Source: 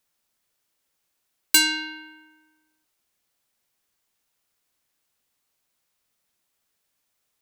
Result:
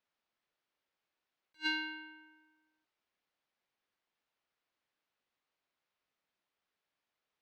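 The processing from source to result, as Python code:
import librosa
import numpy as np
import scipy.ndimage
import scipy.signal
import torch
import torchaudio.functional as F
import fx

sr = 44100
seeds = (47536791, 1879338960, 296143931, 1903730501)

y = fx.low_shelf(x, sr, hz=180.0, db=-10.5)
y = 10.0 ** (-10.0 / 20.0) * (np.abs((y / 10.0 ** (-10.0 / 20.0) + 3.0) % 4.0 - 2.0) - 1.0)
y = fx.air_absorb(y, sr, metres=230.0)
y = fx.attack_slew(y, sr, db_per_s=450.0)
y = y * 10.0 ** (-4.0 / 20.0)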